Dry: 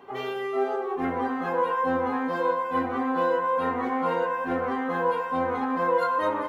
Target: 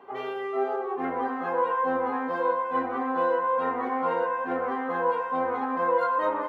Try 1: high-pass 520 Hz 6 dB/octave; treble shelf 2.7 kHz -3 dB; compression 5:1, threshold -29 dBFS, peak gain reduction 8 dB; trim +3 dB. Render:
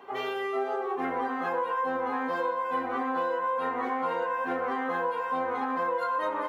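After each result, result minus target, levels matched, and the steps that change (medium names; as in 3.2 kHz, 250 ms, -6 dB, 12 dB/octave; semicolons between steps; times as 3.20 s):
compression: peak gain reduction +8 dB; 4 kHz band +7.0 dB
remove: compression 5:1, threshold -29 dBFS, peak gain reduction 8 dB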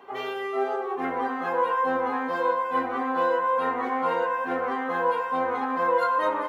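4 kHz band +6.0 dB
change: treble shelf 2.7 kHz -15 dB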